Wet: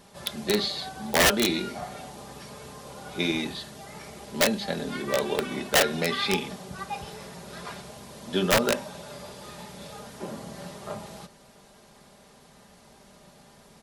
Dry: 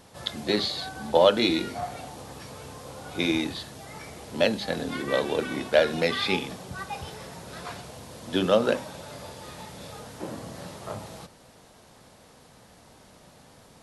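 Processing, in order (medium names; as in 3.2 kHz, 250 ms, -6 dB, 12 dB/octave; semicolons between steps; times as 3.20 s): comb 5 ms, depth 54%; integer overflow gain 12 dB; trim -1.5 dB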